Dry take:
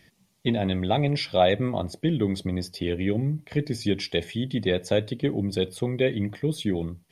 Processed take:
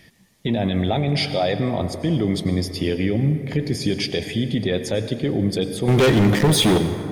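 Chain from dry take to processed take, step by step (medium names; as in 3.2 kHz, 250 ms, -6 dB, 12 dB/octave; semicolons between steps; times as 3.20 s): 5.88–6.78 s: waveshaping leveller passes 5; peak limiter -19 dBFS, peak gain reduction 10.5 dB; plate-style reverb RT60 2.7 s, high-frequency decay 0.4×, pre-delay 80 ms, DRR 9 dB; trim +7 dB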